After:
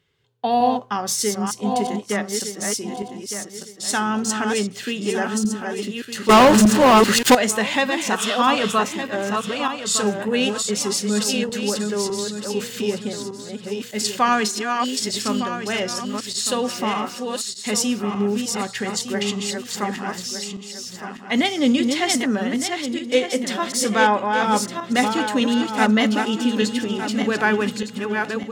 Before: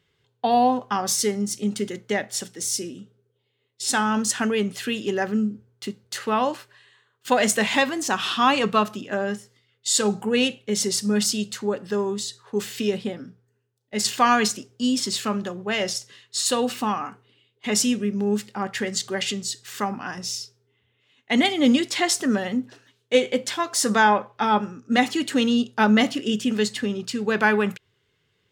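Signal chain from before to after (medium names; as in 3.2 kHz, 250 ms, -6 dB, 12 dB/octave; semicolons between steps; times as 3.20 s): backward echo that repeats 605 ms, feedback 52%, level -4.5 dB; 4.23–5.08 s: peaking EQ 11 kHz -10 dB 0.24 oct; 6.29–7.35 s: waveshaping leveller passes 5; 14.41–14.99 s: high-pass 140 Hz -> 400 Hz 12 dB/octave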